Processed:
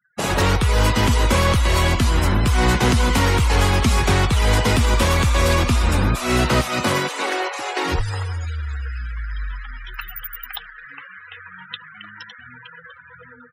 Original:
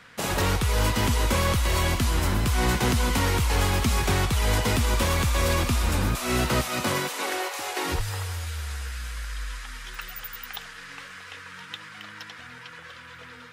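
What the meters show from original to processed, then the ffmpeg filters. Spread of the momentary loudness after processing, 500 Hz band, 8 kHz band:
18 LU, +6.5 dB, +2.5 dB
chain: -af "afftfilt=real='re*gte(hypot(re,im),0.01)':imag='im*gte(hypot(re,im),0.01)':win_size=1024:overlap=0.75,afftdn=noise_reduction=23:noise_floor=-39,volume=6.5dB"

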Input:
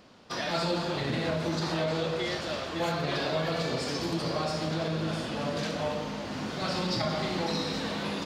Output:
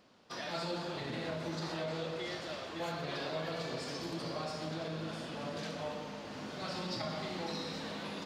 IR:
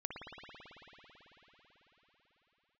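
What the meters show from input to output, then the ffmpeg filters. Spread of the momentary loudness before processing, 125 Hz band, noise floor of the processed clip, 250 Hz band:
4 LU, −10.0 dB, −45 dBFS, −9.0 dB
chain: -filter_complex "[0:a]lowshelf=frequency=93:gain=-7.5,asplit=2[link_01][link_02];[1:a]atrim=start_sample=2205,adelay=124[link_03];[link_02][link_03]afir=irnorm=-1:irlink=0,volume=-12dB[link_04];[link_01][link_04]amix=inputs=2:normalize=0,volume=-8.5dB"

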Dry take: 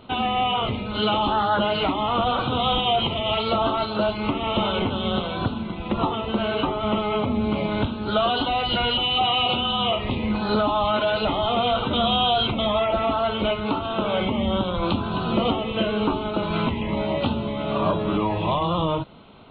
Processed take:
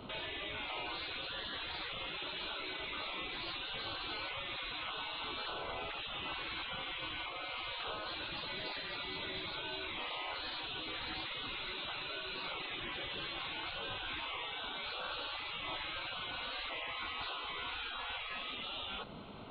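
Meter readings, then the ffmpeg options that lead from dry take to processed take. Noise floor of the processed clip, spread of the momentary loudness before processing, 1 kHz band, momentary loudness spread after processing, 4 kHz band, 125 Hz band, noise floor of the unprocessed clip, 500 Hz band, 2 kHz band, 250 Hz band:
−44 dBFS, 5 LU, −20.5 dB, 1 LU, −13.5 dB, −26.5 dB, −30 dBFS, −24.5 dB, −9.0 dB, −28.0 dB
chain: -filter_complex "[0:a]afftfilt=real='re*lt(hypot(re,im),0.0631)':imag='im*lt(hypot(re,im),0.0631)':win_size=1024:overlap=0.75,acrossover=split=100|1400[link_01][link_02][link_03];[link_03]alimiter=level_in=9.5dB:limit=-24dB:level=0:latency=1:release=27,volume=-9.5dB[link_04];[link_01][link_02][link_04]amix=inputs=3:normalize=0,volume=-1.5dB"

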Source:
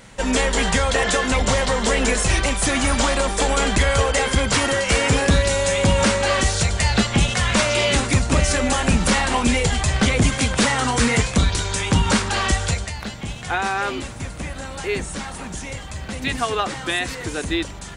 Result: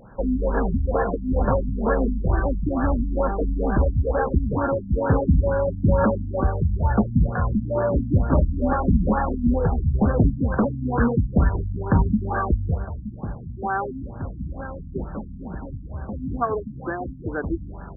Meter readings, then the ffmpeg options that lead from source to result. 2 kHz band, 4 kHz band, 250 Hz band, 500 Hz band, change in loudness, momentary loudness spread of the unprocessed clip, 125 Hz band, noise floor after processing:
−13.5 dB, below −40 dB, 0.0 dB, −2.5 dB, −4.0 dB, 12 LU, 0.0 dB, −37 dBFS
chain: -af "afftfilt=real='re*lt(b*sr/1024,260*pow(1800/260,0.5+0.5*sin(2*PI*2.2*pts/sr)))':imag='im*lt(b*sr/1024,260*pow(1800/260,0.5+0.5*sin(2*PI*2.2*pts/sr)))':win_size=1024:overlap=0.75"

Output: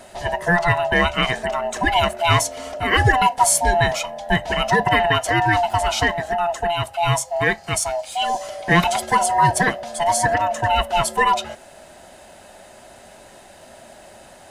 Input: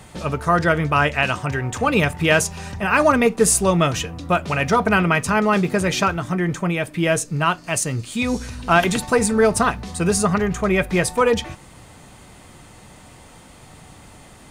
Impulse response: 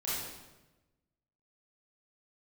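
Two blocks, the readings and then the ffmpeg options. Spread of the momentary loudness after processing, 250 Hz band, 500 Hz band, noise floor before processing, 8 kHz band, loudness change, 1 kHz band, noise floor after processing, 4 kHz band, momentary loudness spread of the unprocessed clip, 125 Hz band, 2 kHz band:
7 LU, −7.0 dB, −2.5 dB, −45 dBFS, 0.0 dB, 0.0 dB, +4.0 dB, −45 dBFS, +4.5 dB, 7 LU, −1.5 dB, +1.5 dB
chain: -af "afftfilt=real='real(if(lt(b,1008),b+24*(1-2*mod(floor(b/24),2)),b),0)':imag='imag(if(lt(b,1008),b+24*(1-2*mod(floor(b/24),2)),b),0)':win_size=2048:overlap=0.75"

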